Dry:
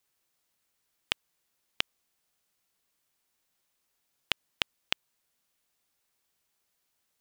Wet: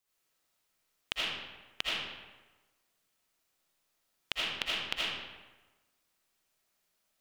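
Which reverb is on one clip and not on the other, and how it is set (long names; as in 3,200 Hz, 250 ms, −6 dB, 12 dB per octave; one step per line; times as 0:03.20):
comb and all-pass reverb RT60 1.2 s, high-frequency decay 0.7×, pre-delay 40 ms, DRR −7.5 dB
level −6.5 dB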